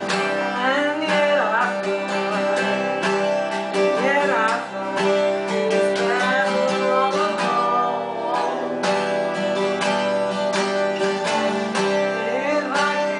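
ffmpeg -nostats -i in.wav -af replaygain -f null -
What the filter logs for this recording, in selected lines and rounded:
track_gain = +2.7 dB
track_peak = 0.331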